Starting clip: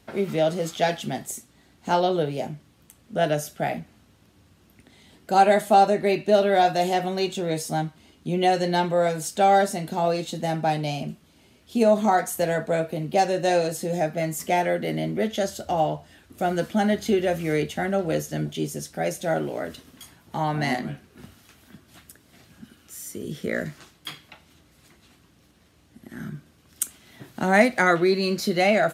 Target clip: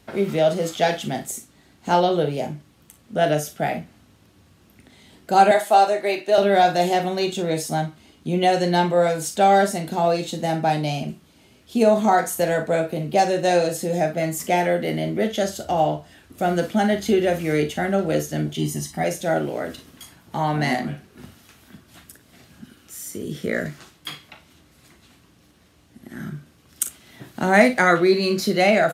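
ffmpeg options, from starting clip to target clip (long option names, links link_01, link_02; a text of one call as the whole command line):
ffmpeg -i in.wav -filter_complex "[0:a]asettb=1/sr,asplit=3[link_01][link_02][link_03];[link_01]atrim=end=5.514[link_04];[link_02]atrim=start=5.51:end=6.38,asetpts=PTS-STARTPTS,afade=type=in:duration=0.004:curve=qsin,afade=type=out:start_time=0.866:duration=0.004:curve=qsin,highpass=470[link_05];[link_03]atrim=start=6.376[link_06];[link_04][link_05]acrossfade=duration=0.004:curve1=hsin:curve2=qsin[link_07];[link_07][link_06]acrossfade=duration=0.004:curve1=qsin:curve2=hsin,asettb=1/sr,asplit=3[link_08][link_09][link_10];[link_08]atrim=end=18.584[link_11];[link_09]atrim=start=18.58:end=19.04,asetpts=PTS-STARTPTS,afade=type=in:duration=0.004:curve=qsin,afade=type=out:start_time=0.456:duration=0.004:curve=qsin,aecho=1:1:1:0.84,atrim=end_sample=20286[link_12];[link_10]atrim=start=19.036[link_13];[link_11][link_12]acrossfade=duration=0.004:curve1=hsin:curve2=qsin[link_14];[link_14][link_13]acrossfade=duration=0.004:curve1=qsin:curve2=hsin,aecho=1:1:40|56:0.266|0.178,volume=2.5dB" out.wav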